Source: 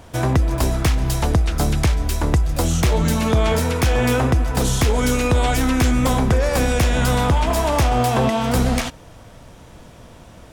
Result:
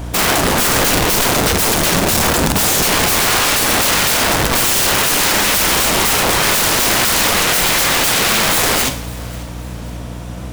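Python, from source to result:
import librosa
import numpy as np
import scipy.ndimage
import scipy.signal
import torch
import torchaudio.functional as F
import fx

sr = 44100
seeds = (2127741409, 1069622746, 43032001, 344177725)

p1 = scipy.signal.sosfilt(scipy.signal.butter(4, 47.0, 'highpass', fs=sr, output='sos'), x)
p2 = fx.high_shelf(p1, sr, hz=11000.0, db=5.5)
p3 = fx.hum_notches(p2, sr, base_hz=50, count=3)
p4 = fx.rider(p3, sr, range_db=10, speed_s=0.5)
p5 = p3 + F.gain(torch.from_numpy(p4), -1.0).numpy()
p6 = fx.add_hum(p5, sr, base_hz=60, snr_db=17)
p7 = (np.mod(10.0 ** (14.5 / 20.0) * p6 + 1.0, 2.0) - 1.0) / 10.0 ** (14.5 / 20.0)
p8 = p7 + fx.echo_feedback(p7, sr, ms=539, feedback_pct=41, wet_db=-21, dry=0)
p9 = fx.rev_schroeder(p8, sr, rt60_s=0.54, comb_ms=32, drr_db=8.5)
p10 = fx.record_warp(p9, sr, rpm=78.0, depth_cents=100.0)
y = F.gain(torch.from_numpy(p10), 4.5).numpy()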